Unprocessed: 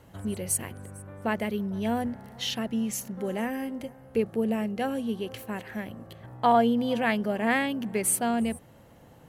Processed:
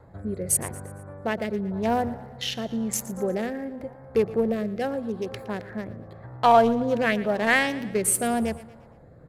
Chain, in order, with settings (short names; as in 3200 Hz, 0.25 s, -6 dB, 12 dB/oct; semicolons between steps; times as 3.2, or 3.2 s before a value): Wiener smoothing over 15 samples; rotary speaker horn 0.9 Hz; in parallel at -11 dB: hard clip -25 dBFS, distortion -10 dB; on the sum: bell 240 Hz -8 dB 1.2 oct; notches 50/100 Hz; on a send: feedback echo 0.116 s, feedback 49%, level -17 dB; on the sum: wow and flutter 25 cents; gain +7 dB